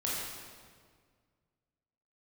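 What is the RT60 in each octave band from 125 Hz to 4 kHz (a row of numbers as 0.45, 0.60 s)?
2.4, 2.1, 1.9, 1.7, 1.5, 1.4 s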